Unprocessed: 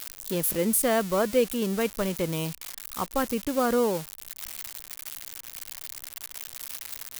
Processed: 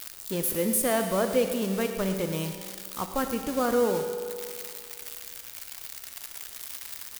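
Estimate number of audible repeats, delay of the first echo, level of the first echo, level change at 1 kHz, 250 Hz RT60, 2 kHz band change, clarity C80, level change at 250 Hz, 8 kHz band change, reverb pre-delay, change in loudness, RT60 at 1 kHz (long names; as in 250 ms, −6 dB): 1, 112 ms, −13.0 dB, −1.0 dB, 2.3 s, −1.0 dB, 7.0 dB, −1.0 dB, −1.0 dB, 10 ms, −1.0 dB, 2.3 s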